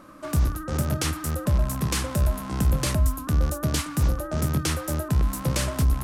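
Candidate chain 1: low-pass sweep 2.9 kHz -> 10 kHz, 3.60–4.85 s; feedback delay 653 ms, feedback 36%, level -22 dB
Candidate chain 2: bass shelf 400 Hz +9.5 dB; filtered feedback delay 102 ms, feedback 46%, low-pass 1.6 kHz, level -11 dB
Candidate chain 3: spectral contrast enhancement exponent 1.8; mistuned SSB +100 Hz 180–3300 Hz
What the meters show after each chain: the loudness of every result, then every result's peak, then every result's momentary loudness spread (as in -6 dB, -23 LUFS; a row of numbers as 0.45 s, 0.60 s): -25.0 LUFS, -17.5 LUFS, -35.0 LUFS; -11.0 dBFS, -3.0 dBFS, -16.0 dBFS; 3 LU, 4 LU, 3 LU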